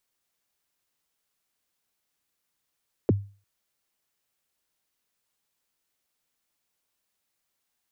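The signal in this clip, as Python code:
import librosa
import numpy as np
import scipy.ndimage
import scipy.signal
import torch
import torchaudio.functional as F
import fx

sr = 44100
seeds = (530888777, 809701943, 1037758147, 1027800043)

y = fx.drum_kick(sr, seeds[0], length_s=0.35, level_db=-14.0, start_hz=520.0, end_hz=100.0, sweep_ms=25.0, decay_s=0.36, click=False)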